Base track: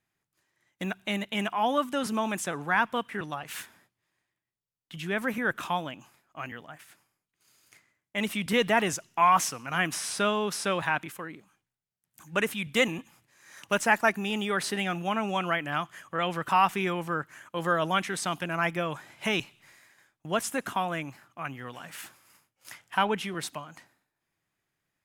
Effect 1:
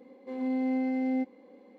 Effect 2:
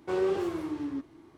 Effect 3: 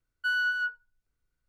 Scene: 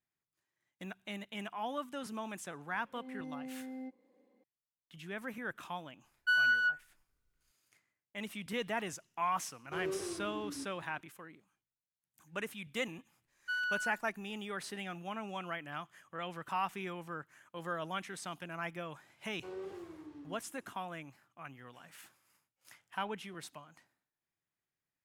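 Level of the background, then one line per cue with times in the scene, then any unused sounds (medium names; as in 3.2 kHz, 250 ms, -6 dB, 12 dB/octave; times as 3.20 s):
base track -12.5 dB
2.66 s: add 1 -15.5 dB
6.03 s: add 3 -0.5 dB
9.64 s: add 2 -10.5 dB + peaking EQ 810 Hz -7 dB 0.23 oct
13.24 s: add 3 -8 dB
19.35 s: add 2 -16.5 dB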